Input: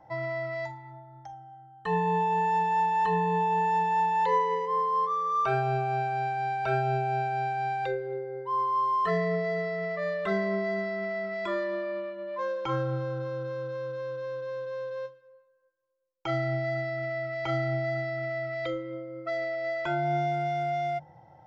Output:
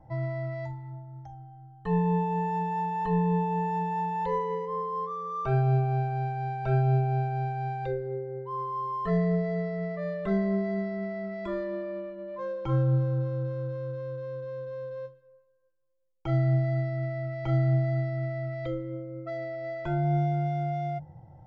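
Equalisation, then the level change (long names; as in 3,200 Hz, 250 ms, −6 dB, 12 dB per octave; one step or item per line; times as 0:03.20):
tilt shelving filter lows +4.5 dB, about 760 Hz
low-shelf EQ 67 Hz +9.5 dB
low-shelf EQ 230 Hz +11 dB
−5.5 dB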